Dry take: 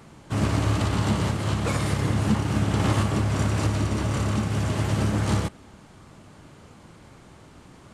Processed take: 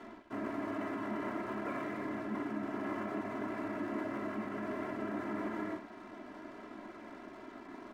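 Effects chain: non-linear reverb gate 0.32 s rising, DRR 8 dB; reverse; compressor 6:1, threshold -34 dBFS, peak gain reduction 16.5 dB; reverse; Chebyshev band-pass 190–2000 Hz, order 3; in parallel at -3 dB: limiter -34.5 dBFS, peak gain reduction 7.5 dB; on the sum: crossover distortion -56 dBFS; comb 3 ms, depth 93%; gain -2.5 dB

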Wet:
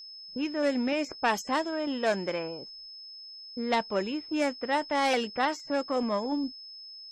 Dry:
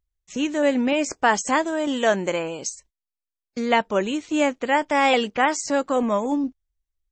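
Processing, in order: self-modulated delay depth 0.11 ms; low-pass opened by the level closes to 350 Hz, open at -15.5 dBFS; whine 5200 Hz -36 dBFS; gain -7 dB

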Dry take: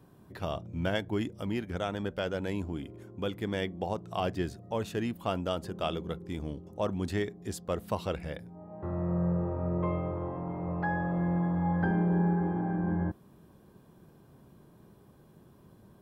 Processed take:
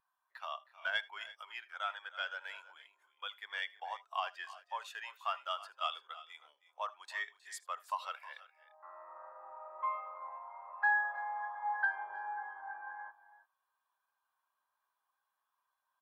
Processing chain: HPF 960 Hz 24 dB/oct; soft clip -27.5 dBFS, distortion -18 dB; tapped delay 77/82/315/345 ms -18/-19.5/-13/-14 dB; spectral expander 1.5:1; gain +5 dB

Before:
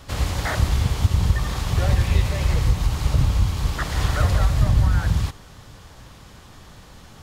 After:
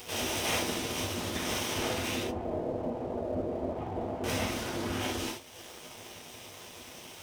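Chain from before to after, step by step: minimum comb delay 0.33 ms; full-wave rectifier; 2.23–4.24 synth low-pass 580 Hz, resonance Q 5.4; limiter -17 dBFS, peak gain reduction 11.5 dB; spectral gate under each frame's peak -20 dB weak; bell 100 Hz +6 dB 0.35 oct; non-linear reverb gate 0.1 s flat, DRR -1 dB; crossover distortion -55.5 dBFS; flange 1.8 Hz, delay 10 ms, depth 5.6 ms, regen -70%; upward compressor, threshold -43 dBFS; gain +4.5 dB

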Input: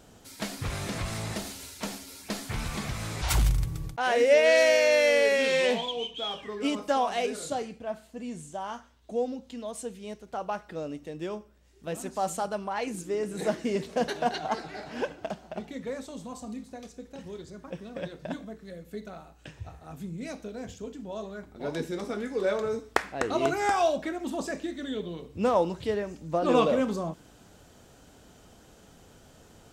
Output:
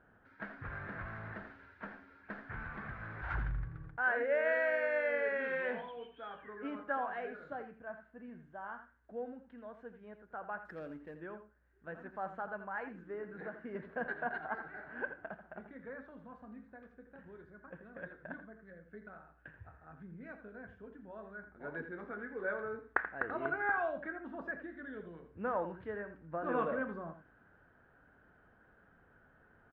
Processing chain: ladder low-pass 1700 Hz, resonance 75%; 10.65–11.15 sample leveller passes 1; 13.21–13.75 compressor, threshold -39 dBFS, peak gain reduction 8.5 dB; echo 83 ms -11 dB; gain -1.5 dB

